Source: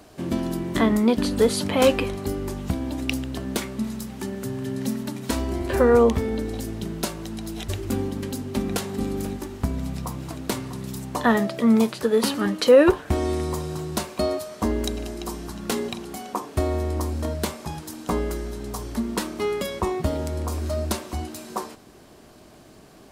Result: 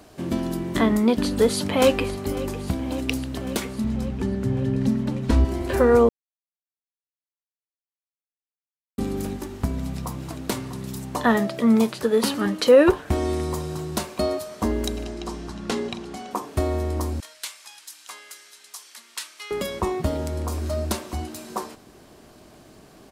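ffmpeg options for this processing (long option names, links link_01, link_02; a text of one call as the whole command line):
ffmpeg -i in.wav -filter_complex "[0:a]asplit=2[link_01][link_02];[link_02]afade=type=in:start_time=1.44:duration=0.01,afade=type=out:start_time=2.16:duration=0.01,aecho=0:1:550|1100|1650|2200|2750|3300|3850|4400|4950|5500|6050|6600:0.149624|0.119699|0.0957591|0.0766073|0.0612858|0.0490286|0.0392229|0.0313783|0.0251027|0.0200821|0.0160657|0.0128526[link_03];[link_01][link_03]amix=inputs=2:normalize=0,asettb=1/sr,asplit=3[link_04][link_05][link_06];[link_04]atrim=end=3.844[link_07];[link_05]atrim=start=3.84:end=5.45,asetpts=PTS-STARTPTS,afade=type=in:duration=0.004:curve=qsin,afade=type=out:start_time=1.606:duration=0.004:curve=qsin,aemphasis=mode=reproduction:type=bsi[link_08];[link_06]atrim=start=5.446[link_09];[link_07][link_08]acrossfade=duration=0.004:curve1=hsin:curve2=qsin[link_10];[link_10][link_09]acrossfade=duration=0.004:curve1=qsin:curve2=hsin,asettb=1/sr,asplit=3[link_11][link_12][link_13];[link_11]atrim=end=15.044[link_14];[link_12]atrim=start=15.04:end=16.31,asetpts=PTS-STARTPTS,afade=type=in:duration=0.004:curve=qsin,afade=type=out:start_time=1.266:duration=0.004:curve=qsin,lowpass=6500[link_15];[link_13]atrim=start=16.306[link_16];[link_14][link_15]acrossfade=duration=0.004:curve1=hsin:curve2=qsin[link_17];[link_17][link_16]acrossfade=duration=0.004:curve1=qsin:curve2=hsin,asettb=1/sr,asplit=3[link_18][link_19][link_20];[link_18]atrim=end=17.204[link_21];[link_19]atrim=start=17.2:end=19.51,asetpts=PTS-STARTPTS,afade=type=in:duration=0.004:curve=qsin,afade=type=out:start_time=2.306:duration=0.004:curve=qsin,asuperpass=centerf=5600:order=4:qfactor=0.53[link_22];[link_20]atrim=start=19.506[link_23];[link_21][link_22]acrossfade=duration=0.004:curve1=hsin:curve2=qsin[link_24];[link_24][link_23]acrossfade=duration=0.004:curve1=qsin:curve2=hsin,asplit=3[link_25][link_26][link_27];[link_25]atrim=end=6.09,asetpts=PTS-STARTPTS,afade=type=out:start_time=6.086:duration=0.004:curve=hsin[link_28];[link_26]atrim=start=6.09:end=8.98,asetpts=PTS-STARTPTS,volume=0[link_29];[link_27]atrim=start=8.98,asetpts=PTS-STARTPTS,afade=type=in:duration=0.004:curve=hsin[link_30];[link_28][link_29][link_30]concat=n=3:v=0:a=1" out.wav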